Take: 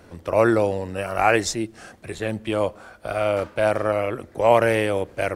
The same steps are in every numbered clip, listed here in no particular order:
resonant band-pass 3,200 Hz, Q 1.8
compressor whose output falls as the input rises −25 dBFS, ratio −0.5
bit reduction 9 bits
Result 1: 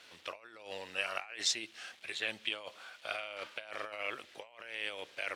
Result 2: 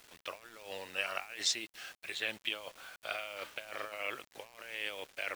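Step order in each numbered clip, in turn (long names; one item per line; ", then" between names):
bit reduction, then compressor whose output falls as the input rises, then resonant band-pass
compressor whose output falls as the input rises, then resonant band-pass, then bit reduction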